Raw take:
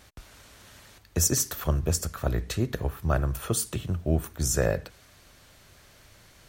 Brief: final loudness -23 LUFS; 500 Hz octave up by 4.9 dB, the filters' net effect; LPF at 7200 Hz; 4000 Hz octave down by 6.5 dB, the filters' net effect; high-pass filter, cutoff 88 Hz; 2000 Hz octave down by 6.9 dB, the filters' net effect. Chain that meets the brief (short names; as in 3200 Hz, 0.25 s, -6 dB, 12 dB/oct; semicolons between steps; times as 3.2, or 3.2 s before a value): HPF 88 Hz; LPF 7200 Hz; bell 500 Hz +6.5 dB; bell 2000 Hz -8.5 dB; bell 4000 Hz -7 dB; gain +5.5 dB